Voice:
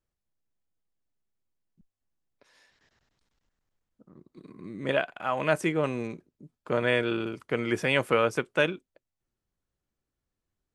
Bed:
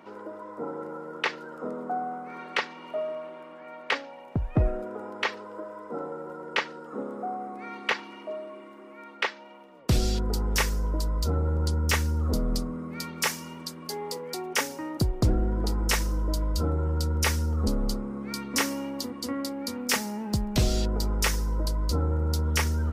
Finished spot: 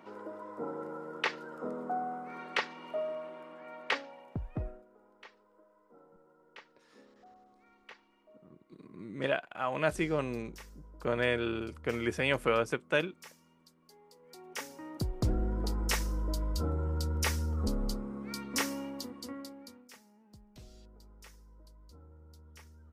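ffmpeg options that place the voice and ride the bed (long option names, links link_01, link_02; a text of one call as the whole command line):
ffmpeg -i stem1.wav -i stem2.wav -filter_complex "[0:a]adelay=4350,volume=-4.5dB[link_01];[1:a]volume=15.5dB,afade=type=out:start_time=3.88:duration=0.97:silence=0.0841395,afade=type=in:start_time=14.16:duration=1.27:silence=0.105925,afade=type=out:start_time=18.78:duration=1.12:silence=0.0668344[link_02];[link_01][link_02]amix=inputs=2:normalize=0" out.wav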